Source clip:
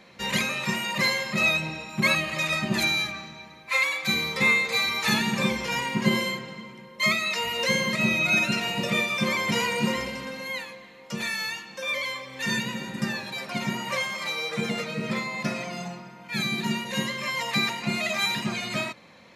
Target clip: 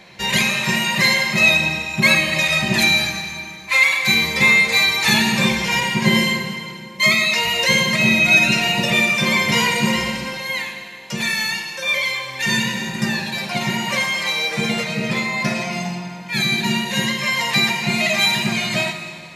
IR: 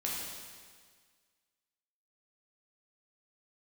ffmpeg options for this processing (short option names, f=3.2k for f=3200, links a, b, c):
-filter_complex "[0:a]acontrast=43,equalizer=f=250:t=o:w=0.33:g=-11,equalizer=f=500:t=o:w=0.33:g=-7,equalizer=f=1.25k:t=o:w=0.33:g=-8,asplit=2[a][b];[1:a]atrim=start_sample=2205,asetrate=39249,aresample=44100[c];[b][c]afir=irnorm=-1:irlink=0,volume=-6.5dB[d];[a][d]amix=inputs=2:normalize=0"